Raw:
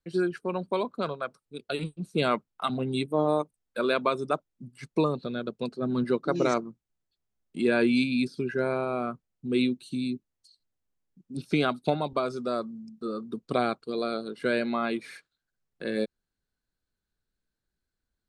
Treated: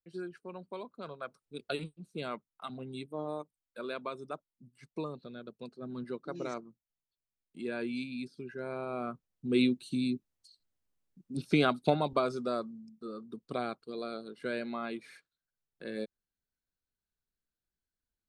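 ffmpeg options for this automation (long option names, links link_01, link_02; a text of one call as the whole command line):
ffmpeg -i in.wav -af "volume=10dB,afade=type=in:start_time=1.02:duration=0.66:silence=0.251189,afade=type=out:start_time=1.68:duration=0.22:silence=0.281838,afade=type=in:start_time=8.59:duration=1.07:silence=0.251189,afade=type=out:start_time=12.18:duration=0.79:silence=0.398107" out.wav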